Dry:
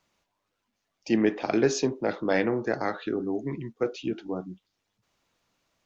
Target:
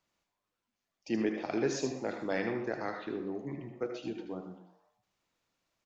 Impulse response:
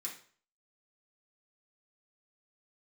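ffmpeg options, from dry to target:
-filter_complex "[0:a]asplit=5[link_01][link_02][link_03][link_04][link_05];[link_02]adelay=122,afreqshift=140,volume=-18dB[link_06];[link_03]adelay=244,afreqshift=280,volume=-24.2dB[link_07];[link_04]adelay=366,afreqshift=420,volume=-30.4dB[link_08];[link_05]adelay=488,afreqshift=560,volume=-36.6dB[link_09];[link_01][link_06][link_07][link_08][link_09]amix=inputs=5:normalize=0,asplit=2[link_10][link_11];[1:a]atrim=start_sample=2205,adelay=75[link_12];[link_11][link_12]afir=irnorm=-1:irlink=0,volume=-4dB[link_13];[link_10][link_13]amix=inputs=2:normalize=0,volume=-8.5dB"

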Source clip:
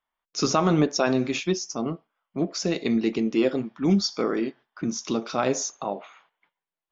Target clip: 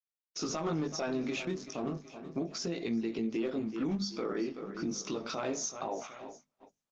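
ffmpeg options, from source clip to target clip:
ffmpeg -i in.wav -filter_complex "[0:a]asplit=3[link_01][link_02][link_03];[link_01]afade=type=out:start_time=1.39:duration=0.02[link_04];[link_02]adynamicsmooth=sensitivity=5:basefreq=800,afade=type=in:start_time=1.39:duration=0.02,afade=type=out:start_time=1.91:duration=0.02[link_05];[link_03]afade=type=in:start_time=1.91:duration=0.02[link_06];[link_04][link_05][link_06]amix=inputs=3:normalize=0,asettb=1/sr,asplit=3[link_07][link_08][link_09];[link_07]atrim=end=3.294[link_10];[link_08]atrim=start=3.29:end=3.98,asetpts=PTS-STARTPTS,afade=type=in:duration=0.004:curve=qsin,afade=type=out:start_time=0.686:duration=0.004:curve=qsin,equalizer=frequency=210:width=6:gain=2.5[link_11];[link_09]atrim=start=3.976[link_12];[link_10][link_11]acrossfade=duration=0.004:curve1=hsin:curve2=qsin[link_13];[link_13][link_12]acrossfade=duration=0.004:curve1=qsin:curve2=hsin,asoftclip=type=hard:threshold=-14dB,asettb=1/sr,asplit=3[link_14][link_15][link_16];[link_14]atrim=end=4.484[link_17];[link_15]atrim=start=4.48:end=5.07,asetpts=PTS-STARTPTS,afade=type=in:duration=0.004:curve=qsin,afade=type=out:start_time=0.586:duration=0.004:curve=qsin,equalizer=frequency=1700:width=4.3:gain=-7[link_18];[link_16]atrim=start=5.066[link_19];[link_17][link_18]acrossfade=duration=0.004:curve1=hsin:curve2=qsin[link_20];[link_20][link_19]acrossfade=duration=0.004:curve1=qsin:curve2=hsin,flanger=delay=17.5:depth=3.1:speed=0.33,aecho=1:1:376|752|1128|1504:0.126|0.0579|0.0266|0.0123,agate=range=-32dB:threshold=-52dB:ratio=16:detection=peak,aresample=16000,aresample=44100,acompressor=threshold=-30dB:ratio=2.5,bandreject=frequency=50:width_type=h:width=6,bandreject=frequency=100:width_type=h:width=6,bandreject=frequency=150:width_type=h:width=6,bandreject=frequency=200:width_type=h:width=6,bandreject=frequency=250:width_type=h:width=6,alimiter=level_in=4dB:limit=-24dB:level=0:latency=1:release=116,volume=-4dB,volume=3dB" -ar 48000 -c:a libopus -b:a 20k out.opus

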